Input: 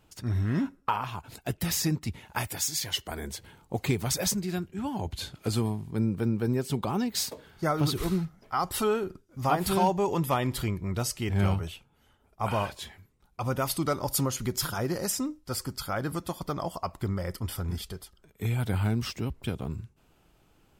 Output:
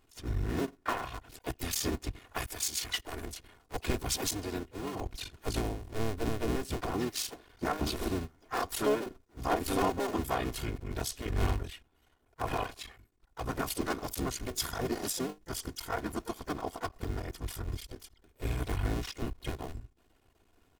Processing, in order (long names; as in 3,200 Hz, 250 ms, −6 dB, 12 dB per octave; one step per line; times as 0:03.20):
sub-harmonics by changed cycles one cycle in 2, muted
comb filter 2.8 ms, depth 84%
pitch-shifted copies added −7 semitones −6 dB, +3 semitones −16 dB, +5 semitones −12 dB
level −5 dB